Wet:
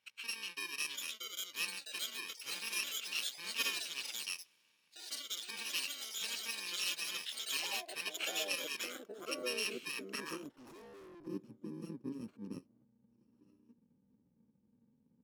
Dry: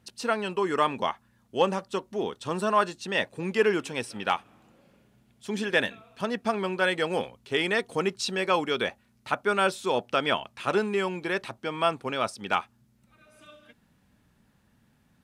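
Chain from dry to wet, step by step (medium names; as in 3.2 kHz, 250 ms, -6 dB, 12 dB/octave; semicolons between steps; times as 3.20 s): bit-reversed sample order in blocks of 64 samples; band-pass sweep 2.7 kHz -> 250 Hz, 9.92–11.38 s; ever faster or slower copies 751 ms, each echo +4 st, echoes 3; 10.49–11.27 s: valve stage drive 53 dB, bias 0.4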